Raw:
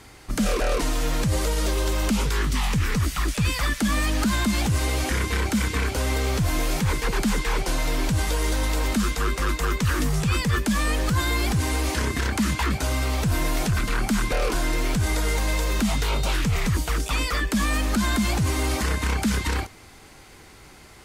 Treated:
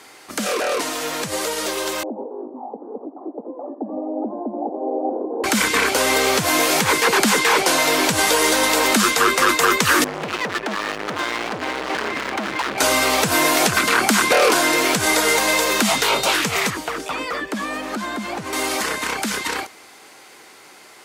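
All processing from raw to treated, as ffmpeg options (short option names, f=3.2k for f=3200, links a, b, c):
-filter_complex "[0:a]asettb=1/sr,asplit=3[a][b][c];[a]atrim=end=2.034[d];[b]atrim=start=2.03:end=5.44,asetpts=PTS-STARTPTS,afade=t=in:d=0.004:c=qsin,afade=t=out:st=3.406:d=0.004:c=qsin,asuperpass=centerf=440:order=12:qfactor=0.76,aecho=1:1:84:0.316,atrim=end_sample=150381[e];[c]atrim=start=5.436[f];[d][e]acrossfade=d=0.004:c1=hsin:c2=qsin[g];[g][f]acrossfade=d=0.004:c1=qsin:c2=hsin,asettb=1/sr,asplit=3[h][i][j];[h]atrim=end=10.044[k];[i]atrim=start=10.04:end=12.78,asetpts=PTS-STARTPTS,afade=t=in:d=0.004:c=qsin,afade=t=out:st=2.736:d=0.004:c=qsin,lowpass=2.3k,volume=31dB,asoftclip=hard,volume=-31dB[l];[j]atrim=start=12.776[m];[k][l]acrossfade=d=0.004:c1=hsin:c2=qsin[n];[n][m]acrossfade=d=0.004:c1=qsin:c2=hsin,asettb=1/sr,asplit=3[o][p][q];[o]atrim=end=16.704[r];[p]atrim=start=16.7:end=18.53,asetpts=PTS-STARTPTS,afade=t=in:d=0.004:c=qsin,afade=t=out:st=1.826:d=0.004:c=qsin,highshelf=f=5.4k:g=-9,acrossover=split=860|2300[s][t][u];[s]acompressor=threshold=-23dB:ratio=4[v];[t]acompressor=threshold=-39dB:ratio=4[w];[u]acompressor=threshold=-45dB:ratio=4[x];[v][w][x]amix=inputs=3:normalize=0[y];[q]atrim=start=18.526[z];[r][y]acrossfade=d=0.004:c1=hsin:c2=qsin[aa];[aa][z]acrossfade=d=0.004:c1=qsin:c2=hsin,highpass=380,dynaudnorm=f=570:g=17:m=8dB,volume=5dB"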